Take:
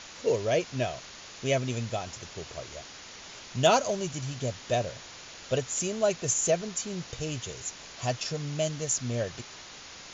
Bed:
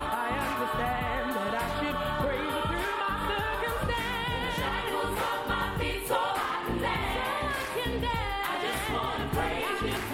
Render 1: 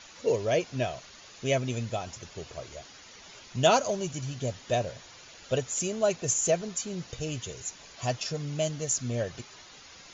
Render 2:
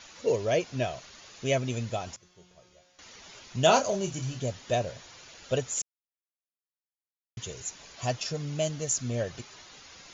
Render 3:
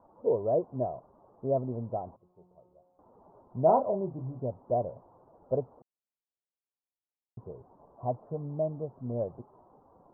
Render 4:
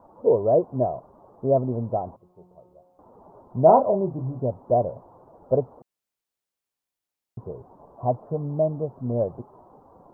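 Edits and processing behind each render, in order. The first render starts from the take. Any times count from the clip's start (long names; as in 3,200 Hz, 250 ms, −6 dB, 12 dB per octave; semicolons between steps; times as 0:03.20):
broadband denoise 8 dB, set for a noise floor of −46 dBFS
0:02.16–0:02.99: tuned comb filter 180 Hz, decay 0.95 s, mix 90%; 0:03.65–0:04.40: double-tracking delay 31 ms −7.5 dB; 0:05.82–0:07.37: silence
Butterworth low-pass 1,000 Hz 48 dB per octave; low-shelf EQ 110 Hz −10 dB
level +8 dB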